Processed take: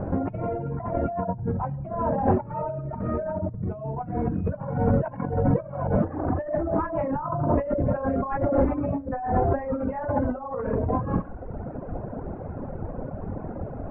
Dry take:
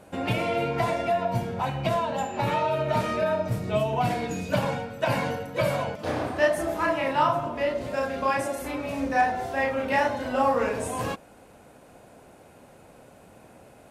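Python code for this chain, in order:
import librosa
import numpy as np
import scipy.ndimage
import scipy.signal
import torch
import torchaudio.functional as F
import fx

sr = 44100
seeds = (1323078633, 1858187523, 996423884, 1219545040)

y = fx.cvsd(x, sr, bps=32000)
y = scipy.signal.sosfilt(scipy.signal.butter(4, 1500.0, 'lowpass', fs=sr, output='sos'), y)
y = fx.tilt_eq(y, sr, slope=-4.0)
y = fx.hum_notches(y, sr, base_hz=60, count=8)
y = fx.echo_thinned(y, sr, ms=68, feedback_pct=55, hz=420.0, wet_db=-14.5)
y = fx.over_compress(y, sr, threshold_db=-31.0, ratio=-1.0)
y = fx.dereverb_blind(y, sr, rt60_s=1.3)
y = y * librosa.db_to_amplitude(6.5)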